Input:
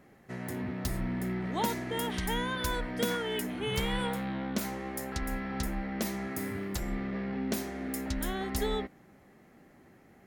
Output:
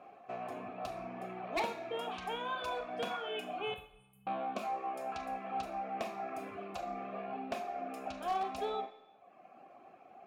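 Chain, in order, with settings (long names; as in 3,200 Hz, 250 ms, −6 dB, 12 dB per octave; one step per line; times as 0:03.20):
0:03.74–0:04.27: inverse Chebyshev band-stop filter 260–5,800 Hz, stop band 40 dB
reverb reduction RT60 1.1 s
in parallel at +3 dB: downward compressor, threshold −46 dBFS, peak gain reduction 19 dB
on the sum: formant filter a
wave folding −36.5 dBFS
on a send at −5 dB: convolution reverb RT60 0.95 s, pre-delay 25 ms
on the sum: level +9 dB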